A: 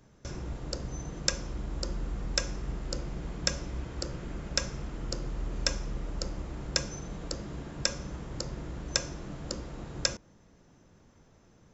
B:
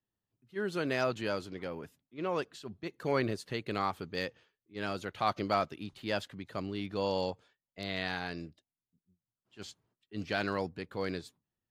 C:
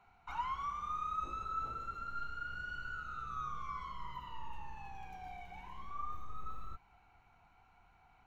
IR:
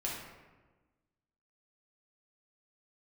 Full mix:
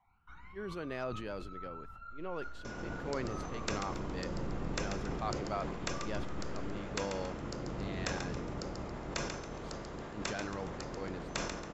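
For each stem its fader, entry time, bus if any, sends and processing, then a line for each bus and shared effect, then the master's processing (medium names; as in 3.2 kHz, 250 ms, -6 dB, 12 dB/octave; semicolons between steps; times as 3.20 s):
-5.5 dB, 2.40 s, no send, echo send -7 dB, spectral peaks clipped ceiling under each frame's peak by 16 dB
-7.5 dB, 0.00 s, no send, no echo send, none
-4.5 dB, 0.00 s, no send, echo send -12.5 dB, phase shifter stages 12, 0.26 Hz, lowest notch 120–1600 Hz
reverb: none
echo: feedback delay 138 ms, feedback 38%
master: treble shelf 3.6 kHz -11.5 dB; decay stretcher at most 35 dB/s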